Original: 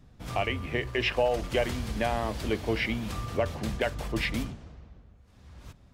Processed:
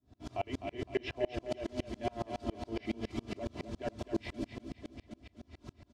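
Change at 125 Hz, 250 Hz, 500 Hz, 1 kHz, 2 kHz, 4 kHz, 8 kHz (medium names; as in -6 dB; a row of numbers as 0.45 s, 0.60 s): -10.5 dB, -5.0 dB, -8.5 dB, -9.5 dB, -15.0 dB, -13.0 dB, -13.0 dB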